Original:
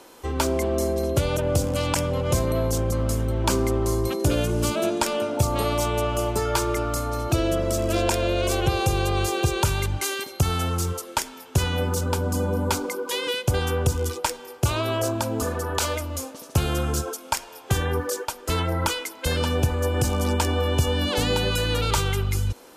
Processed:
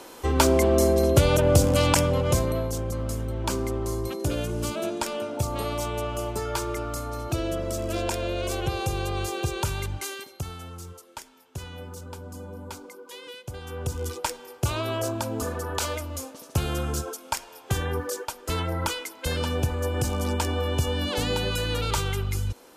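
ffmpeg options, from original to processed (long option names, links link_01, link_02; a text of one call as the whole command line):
ffmpeg -i in.wav -af "volume=15.5dB,afade=type=out:start_time=1.85:duration=0.84:silence=0.334965,afade=type=out:start_time=9.92:duration=0.65:silence=0.334965,afade=type=in:start_time=13.63:duration=0.54:silence=0.266073" out.wav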